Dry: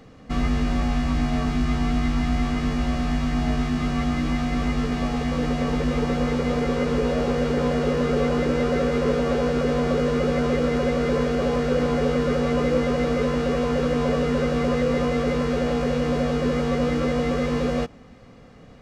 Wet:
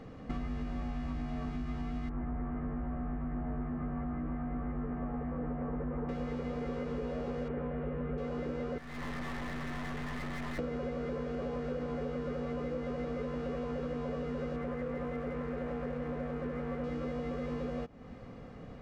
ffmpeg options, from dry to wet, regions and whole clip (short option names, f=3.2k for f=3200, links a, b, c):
-filter_complex "[0:a]asettb=1/sr,asplit=3[a][b][c];[a]atrim=end=2.094[d];[b]atrim=start=2.09:end=6.09,asetpts=PTS-STARTPTS,afade=t=in:d=0.004:c=qsin,afade=t=out:st=3.996:d=0.004:c=qsin,asoftclip=type=hard:threshold=-19.5dB,lowpass=f=1.7k:w=0.5412,lowpass=f=1.7k:w=1.3066[e];[c]atrim=start=6.086[f];[d][e]acrossfade=d=0.004:c1=hsin:c2=qsin[g];[g][f]acrossfade=d=0.004:c1=qsin:c2=hsin,asettb=1/sr,asplit=3[h][i][j];[h]atrim=end=7.484[k];[i]atrim=start=7.48:end=8.18,asetpts=PTS-STARTPTS,afade=t=in:d=0.004:c=qsin,afade=t=out:st=0.696:d=0.004:c=qsin,lowpass=f=2.5k:w=0.5412,lowpass=f=2.5k:w=1.3066,asubboost=boost=6.5:cutoff=230[l];[j]atrim=start=8.176[m];[k][l]acrossfade=d=0.004:c1=hsin:c2=qsin[n];[n][m]acrossfade=d=0.004:c1=qsin:c2=hsin,asettb=1/sr,asplit=3[o][p][q];[o]atrim=end=8.784[r];[p]atrim=start=8.78:end=10.59,asetpts=PTS-STARTPTS,afade=t=in:d=0.004:c=qsin,afade=t=out:st=1.806:d=0.004:c=qsin,lowpass=f=1.8k:t=q:w=5.6,aecho=1:1:1:0.83,atrim=end_sample=79821,aeval=exprs='(tanh(56.2*val(0)+0.55)-tanh(0.55))/56.2':c=same[s];[q]atrim=start=10.586[t];[r][s]acrossfade=d=0.004:c1=hsin:c2=qsin[u];[u][t]acrossfade=d=0.004:c1=qsin:c2=hsin,asettb=1/sr,asplit=3[v][w][x];[v]atrim=end=14.564[y];[w]atrim=start=14.56:end=16.84,asetpts=PTS-STARTPTS,afade=t=in:d=0.004:c=qsin,afade=t=out:st=2.276:d=0.004:c=qsin,highshelf=f=3k:t=q:w=1.5:g=-13,aeval=exprs='sgn(val(0))*max(abs(val(0))-0.0141,0)':c=same[z];[x]atrim=start=16.836[aa];[y][z]acrossfade=d=0.004:c1=hsin:c2=qsin[ab];[ab][aa]acrossfade=d=0.004:c1=qsin:c2=hsin,highshelf=f=3k:g=-11.5,acompressor=threshold=-35dB:ratio=6"